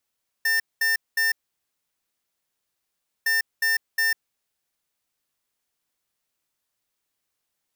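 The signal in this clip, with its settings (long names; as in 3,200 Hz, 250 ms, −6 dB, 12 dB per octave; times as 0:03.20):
beeps in groups square 1,800 Hz, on 0.15 s, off 0.21 s, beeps 3, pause 1.94 s, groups 2, −21.5 dBFS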